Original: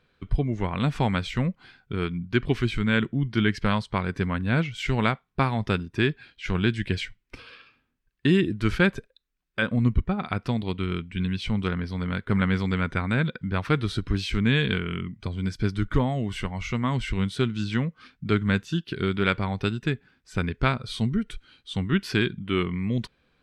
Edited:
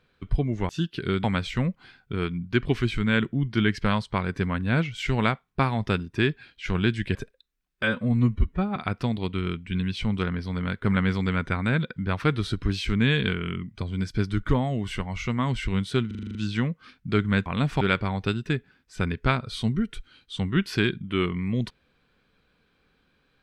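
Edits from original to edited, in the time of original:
0.69–1.04 swap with 18.63–19.18
6.95–8.91 cut
9.59–10.21 stretch 1.5×
17.52 stutter 0.04 s, 8 plays

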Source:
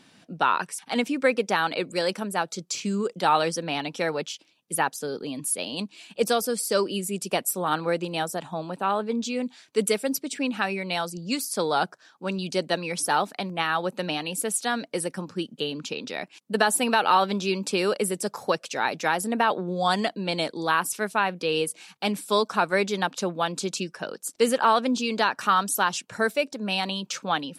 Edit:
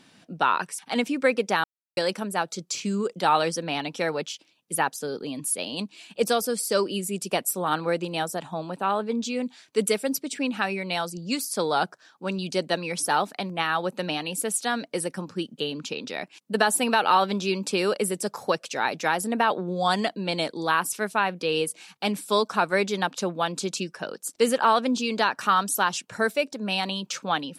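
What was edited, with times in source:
1.64–1.97 mute

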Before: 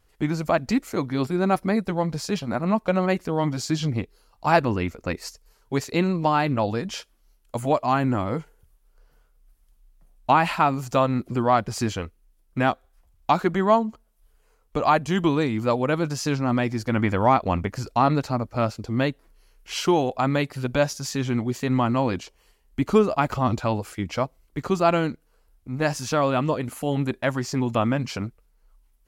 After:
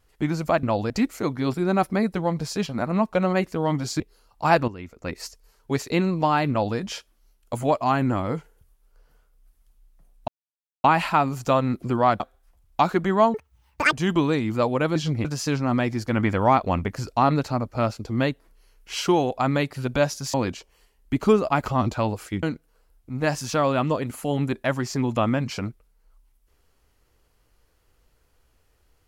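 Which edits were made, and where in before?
3.73–4.02 move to 16.04
4.7–5.23 fade in quadratic, from -13.5 dB
6.52–6.79 copy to 0.63
10.3 insert silence 0.56 s
11.66–12.7 cut
13.84–15.01 speed 199%
21.13–22 cut
24.09–25.01 cut

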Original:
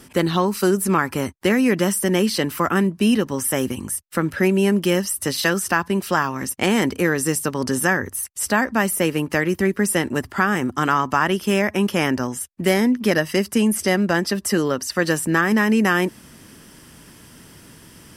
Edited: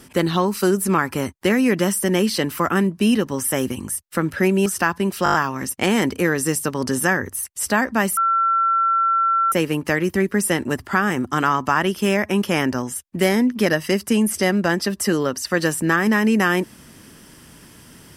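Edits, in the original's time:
4.66–5.56 cut
6.14 stutter 0.02 s, 6 plays
8.97 add tone 1350 Hz -15 dBFS 1.35 s

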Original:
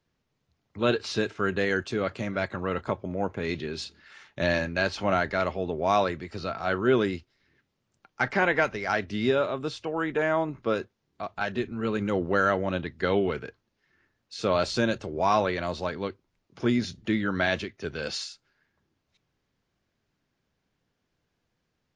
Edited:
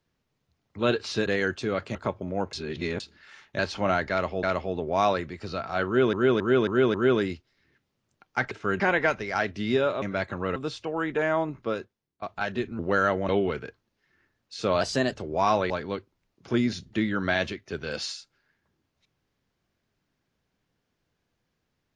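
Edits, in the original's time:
1.26–1.55 move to 8.34
2.24–2.78 move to 9.56
3.36–3.83 reverse
4.42–4.82 cut
5.34–5.66 loop, 2 plays
6.77–7.04 loop, 5 plays
10.51–11.22 fade out, to -23 dB
11.79–12.21 cut
12.71–13.09 cut
14.61–14.97 speed 112%
15.54–15.82 cut

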